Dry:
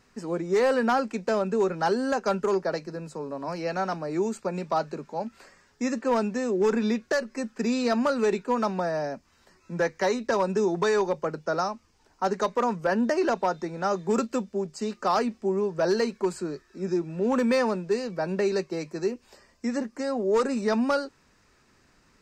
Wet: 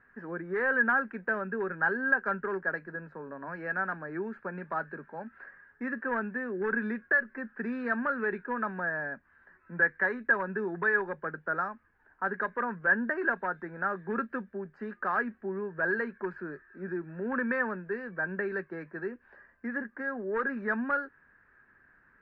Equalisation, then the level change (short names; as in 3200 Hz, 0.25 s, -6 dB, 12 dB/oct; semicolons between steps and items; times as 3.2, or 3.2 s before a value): dynamic EQ 680 Hz, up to -5 dB, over -36 dBFS, Q 1.2; ladder low-pass 1700 Hz, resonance 85%; +5.0 dB